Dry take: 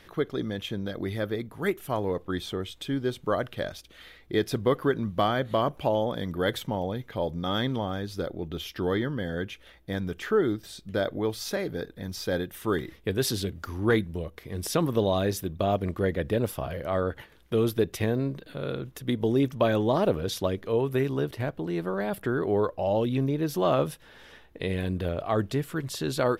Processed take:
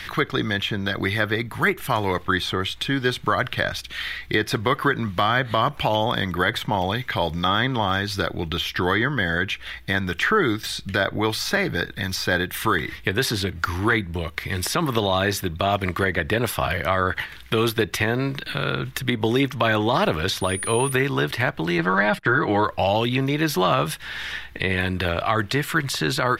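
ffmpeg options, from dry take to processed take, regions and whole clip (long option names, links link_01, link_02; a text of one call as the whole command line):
ffmpeg -i in.wav -filter_complex "[0:a]asettb=1/sr,asplit=3[link_01][link_02][link_03];[link_01]atrim=end=20.414[link_04];[link_02]atrim=start=20.41:end=20.92,asetpts=PTS-STARTPTS,afade=type=in:duration=0.004:curve=qsin,afade=type=out:start_time=0.506:duration=0.004:curve=qsin,highshelf=frequency=11000:gain=11,aeval=exprs='val(0)+0.0112*sin(2*PI*9600*n/s)':channel_layout=same[link_05];[link_03]atrim=start=20.916[link_06];[link_04][link_05]acrossfade=duration=0.004:curve1=hsin:curve2=qsin[link_07];[link_07][link_06]acrossfade=duration=0.004:curve1=qsin:curve2=hsin,asettb=1/sr,asplit=3[link_08][link_09][link_10];[link_08]atrim=end=21.784[link_11];[link_09]atrim=start=21.78:end=22.65,asetpts=PTS-STARTPTS,afade=type=in:duration=0.004:curve=qsin,afade=type=out:start_time=0.866:duration=0.004:curve=qsin,agate=range=-24dB:threshold=-40dB:ratio=16:release=100:detection=peak,lowpass=6600,aecho=1:1:6.3:0.64,atrim=end_sample=38367[link_12];[link_10]atrim=start=22.646[link_13];[link_11][link_12]acrossfade=duration=0.004:curve1=hsin:curve2=qsin[link_14];[link_14][link_13]acrossfade=duration=0.004:curve1=qsin:curve2=hsin,equalizer=frequency=250:width_type=o:width=1:gain=-6,equalizer=frequency=500:width_type=o:width=1:gain=-12,equalizer=frequency=2000:width_type=o:width=1:gain=7,equalizer=frequency=4000:width_type=o:width=1:gain=4,acrossover=split=270|1500[link_15][link_16][link_17];[link_15]acompressor=threshold=-45dB:ratio=4[link_18];[link_16]acompressor=threshold=-33dB:ratio=4[link_19];[link_17]acompressor=threshold=-44dB:ratio=4[link_20];[link_18][link_19][link_20]amix=inputs=3:normalize=0,alimiter=level_in=23dB:limit=-1dB:release=50:level=0:latency=1,volume=-7dB" out.wav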